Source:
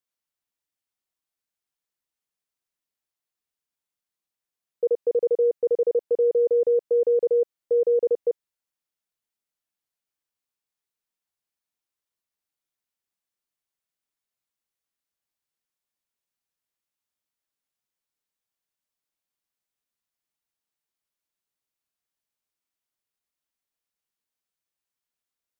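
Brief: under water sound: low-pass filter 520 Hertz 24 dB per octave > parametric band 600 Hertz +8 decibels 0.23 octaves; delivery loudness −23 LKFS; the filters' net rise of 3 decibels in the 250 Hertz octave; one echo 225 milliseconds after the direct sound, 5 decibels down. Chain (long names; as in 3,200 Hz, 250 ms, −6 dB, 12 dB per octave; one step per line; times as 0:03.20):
low-pass filter 520 Hz 24 dB per octave
parametric band 250 Hz +6 dB
parametric band 600 Hz +8 dB 0.23 octaves
single-tap delay 225 ms −5 dB
level −3 dB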